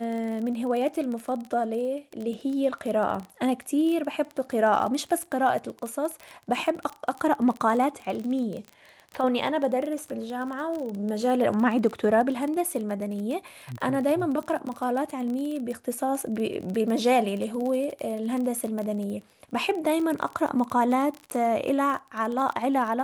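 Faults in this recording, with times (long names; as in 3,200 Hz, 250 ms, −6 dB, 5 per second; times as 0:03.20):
surface crackle 26 per second −30 dBFS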